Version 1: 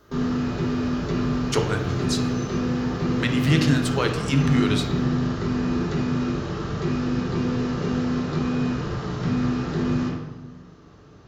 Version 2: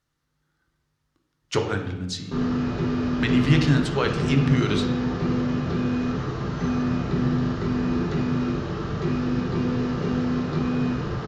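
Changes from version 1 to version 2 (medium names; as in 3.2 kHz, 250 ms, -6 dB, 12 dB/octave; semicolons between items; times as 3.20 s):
background: entry +2.20 s; master: add distance through air 71 m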